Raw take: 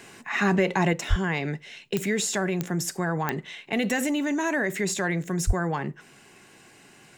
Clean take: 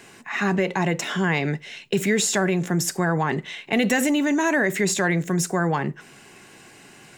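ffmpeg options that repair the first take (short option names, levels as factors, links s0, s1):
-filter_complex "[0:a]adeclick=t=4,asplit=3[s0][s1][s2];[s0]afade=t=out:st=1.09:d=0.02[s3];[s1]highpass=f=140:w=0.5412,highpass=f=140:w=1.3066,afade=t=in:st=1.09:d=0.02,afade=t=out:st=1.21:d=0.02[s4];[s2]afade=t=in:st=1.21:d=0.02[s5];[s3][s4][s5]amix=inputs=3:normalize=0,asplit=3[s6][s7][s8];[s6]afade=t=out:st=5.46:d=0.02[s9];[s7]highpass=f=140:w=0.5412,highpass=f=140:w=1.3066,afade=t=in:st=5.46:d=0.02,afade=t=out:st=5.58:d=0.02[s10];[s8]afade=t=in:st=5.58:d=0.02[s11];[s9][s10][s11]amix=inputs=3:normalize=0,asetnsamples=n=441:p=0,asendcmd='0.93 volume volume 5dB',volume=1"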